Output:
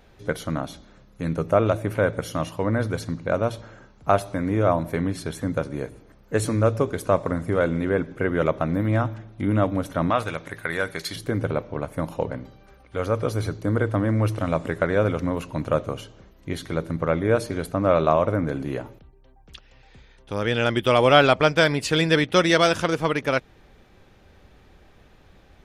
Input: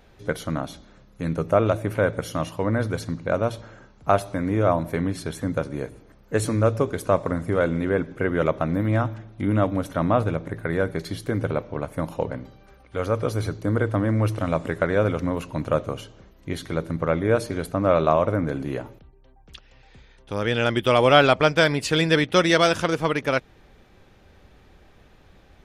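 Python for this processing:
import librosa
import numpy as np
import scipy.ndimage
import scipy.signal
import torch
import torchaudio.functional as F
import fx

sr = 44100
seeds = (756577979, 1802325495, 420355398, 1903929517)

y = fx.tilt_shelf(x, sr, db=-9.0, hz=910.0, at=(10.1, 11.16))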